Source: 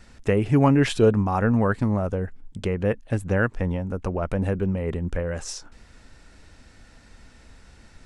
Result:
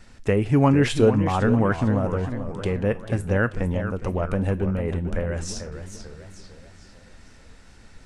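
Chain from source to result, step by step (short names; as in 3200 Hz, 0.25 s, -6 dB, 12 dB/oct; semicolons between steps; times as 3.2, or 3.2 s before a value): on a send at -9 dB: passive tone stack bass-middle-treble 10-0-10 + reverb RT60 0.35 s, pre-delay 4 ms; on the sum: warbling echo 0.445 s, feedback 48%, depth 205 cents, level -10 dB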